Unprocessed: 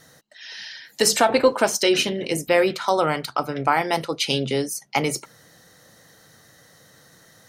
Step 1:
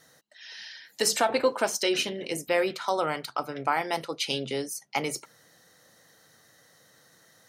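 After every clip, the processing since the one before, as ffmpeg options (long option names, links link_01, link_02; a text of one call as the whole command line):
ffmpeg -i in.wav -af "lowshelf=frequency=180:gain=-8.5,volume=-6dB" out.wav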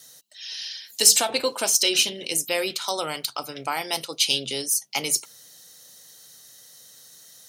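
ffmpeg -i in.wav -af "aexciter=amount=2.9:drive=8.3:freq=2600,volume=-2dB" out.wav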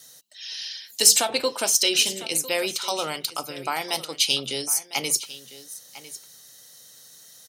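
ffmpeg -i in.wav -af "aecho=1:1:1002:0.15" out.wav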